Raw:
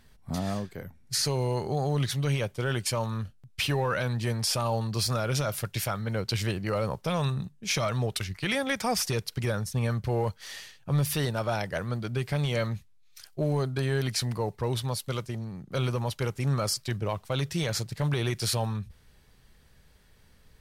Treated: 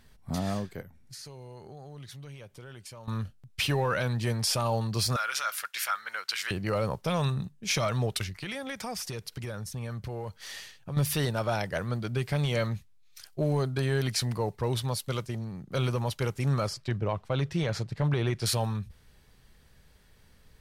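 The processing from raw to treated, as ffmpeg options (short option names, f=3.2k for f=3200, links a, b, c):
-filter_complex "[0:a]asettb=1/sr,asplit=3[a][b][c];[a]atrim=end=0.814[d];[b]atrim=start=0.81:end=3.08,asetpts=PTS-STARTPTS,afade=t=in:d=0.004:c=qsin,afade=t=out:st=2.266:d=0.004:c=qsin,acompressor=threshold=-48dB:ratio=3:attack=3.2:release=140:knee=1:detection=peak[e];[c]atrim=start=3.076[f];[d][e]acrossfade=d=0.004:c1=hsin:c2=qsin[g];[g][f]acrossfade=d=0.004:c1=qsin:c2=hsin,asettb=1/sr,asplit=3[h][i][j];[h]atrim=end=5.164[k];[i]atrim=start=5.16:end=6.51,asetpts=PTS-STARTPTS,afade=t=in:d=0.004:c=qsin,afade=t=out:st=1.346:d=0.004:c=qsin,highpass=f=1.4k:t=q:w=2.1[l];[j]atrim=start=6.506[m];[k][l]acrossfade=d=0.004:c1=hsin:c2=qsin[n];[n][m]acrossfade=d=0.004:c1=qsin:c2=hsin,asettb=1/sr,asplit=3[o][p][q];[o]atrim=end=8.294[r];[p]atrim=start=8.29:end=10.97,asetpts=PTS-STARTPTS,afade=t=in:d=0.004:c=qsin,afade=t=out:st=2.676:d=0.004:c=qsin,acompressor=threshold=-36dB:ratio=2.5:attack=3.2:release=140:knee=1:detection=peak[s];[q]atrim=start=10.966[t];[r][s]acrossfade=d=0.004:c1=hsin:c2=qsin[u];[u][t]acrossfade=d=0.004:c1=qsin:c2=hsin,asettb=1/sr,asplit=3[v][w][x];[v]atrim=end=16.674[y];[w]atrim=start=16.67:end=18.46,asetpts=PTS-STARTPTS,afade=t=in:d=0.004:c=qsin,afade=t=out:st=1.786:d=0.004:c=qsin,aemphasis=mode=reproduction:type=75fm[z];[x]atrim=start=18.456[aa];[y][z]acrossfade=d=0.004:c1=hsin:c2=qsin[ab];[ab][aa]acrossfade=d=0.004:c1=qsin:c2=hsin"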